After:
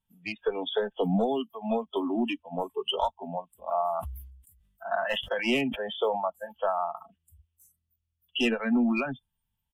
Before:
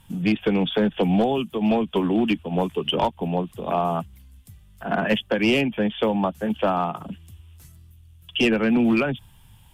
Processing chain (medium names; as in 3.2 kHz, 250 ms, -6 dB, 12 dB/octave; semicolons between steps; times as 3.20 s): spectral noise reduction 26 dB; comb 4.5 ms, depth 36%; 3.88–6.28 s: decay stretcher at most 57 dB/s; trim -5.5 dB